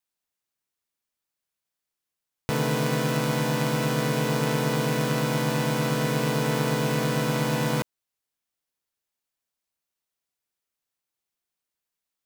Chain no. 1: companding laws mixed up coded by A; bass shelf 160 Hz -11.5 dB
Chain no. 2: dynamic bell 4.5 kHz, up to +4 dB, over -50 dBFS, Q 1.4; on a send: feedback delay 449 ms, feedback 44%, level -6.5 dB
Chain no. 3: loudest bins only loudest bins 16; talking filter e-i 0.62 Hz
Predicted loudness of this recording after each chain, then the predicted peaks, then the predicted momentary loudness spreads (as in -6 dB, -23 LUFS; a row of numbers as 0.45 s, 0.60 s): -28.0 LUFS, -24.5 LUFS, -38.0 LUFS; -12.5 dBFS, -11.0 dBFS, -25.0 dBFS; 2 LU, 10 LU, 6 LU